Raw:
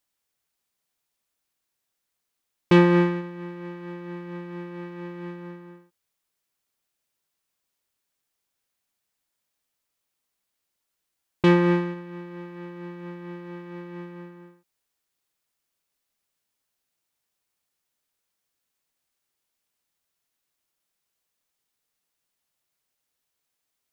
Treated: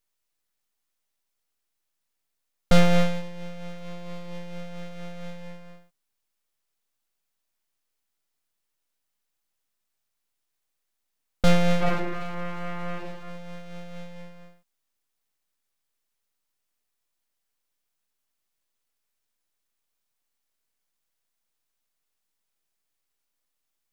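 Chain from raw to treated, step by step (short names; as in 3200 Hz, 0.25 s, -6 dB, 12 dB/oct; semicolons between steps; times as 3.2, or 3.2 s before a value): 3.22–4.92 low shelf 66 Hz +6 dB; 11.77–12.93 reverb throw, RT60 1.2 s, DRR -6.5 dB; full-wave rectifier; gain +1.5 dB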